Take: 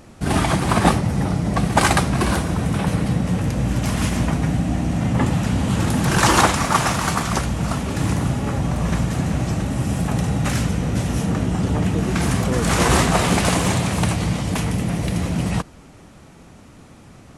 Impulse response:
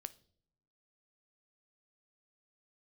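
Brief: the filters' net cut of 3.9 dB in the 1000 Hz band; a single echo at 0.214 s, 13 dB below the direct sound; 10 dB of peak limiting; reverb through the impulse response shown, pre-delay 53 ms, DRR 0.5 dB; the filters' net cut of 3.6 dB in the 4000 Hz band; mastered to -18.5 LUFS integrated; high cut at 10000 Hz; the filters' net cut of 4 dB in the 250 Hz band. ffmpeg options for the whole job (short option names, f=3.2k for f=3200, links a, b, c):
-filter_complex "[0:a]lowpass=10k,equalizer=f=250:t=o:g=-6,equalizer=f=1k:t=o:g=-4.5,equalizer=f=4k:t=o:g=-4.5,alimiter=limit=-14.5dB:level=0:latency=1,aecho=1:1:214:0.224,asplit=2[a][b];[1:a]atrim=start_sample=2205,adelay=53[c];[b][c]afir=irnorm=-1:irlink=0,volume=4dB[d];[a][d]amix=inputs=2:normalize=0,volume=3dB"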